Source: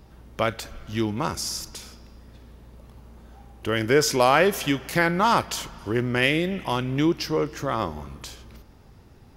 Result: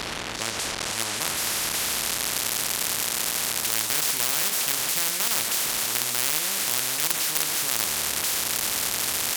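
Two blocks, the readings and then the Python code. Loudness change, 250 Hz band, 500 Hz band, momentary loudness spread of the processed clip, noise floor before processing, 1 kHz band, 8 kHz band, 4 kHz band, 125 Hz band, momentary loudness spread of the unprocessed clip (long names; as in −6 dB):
+0.5 dB, −14.0 dB, −13.0 dB, 4 LU, −51 dBFS, −7.5 dB, +13.0 dB, +6.5 dB, −13.0 dB, 17 LU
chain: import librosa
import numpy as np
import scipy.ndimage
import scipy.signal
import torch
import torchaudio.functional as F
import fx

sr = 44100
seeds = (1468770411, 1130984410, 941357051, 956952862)

p1 = fx.delta_mod(x, sr, bps=64000, step_db=-29.0)
p2 = fx.high_shelf(p1, sr, hz=3400.0, db=8.5)
p3 = fx.doubler(p2, sr, ms=26.0, db=-5)
p4 = fx.quant_companded(p3, sr, bits=2)
p5 = p3 + (p4 * librosa.db_to_amplitude(-7.0))
p6 = fx.filter_sweep_bandpass(p5, sr, from_hz=310.0, to_hz=7500.0, start_s=0.37, end_s=2.56, q=1.2)
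p7 = fx.spectral_comp(p6, sr, ratio=10.0)
y = p7 * librosa.db_to_amplitude(5.5)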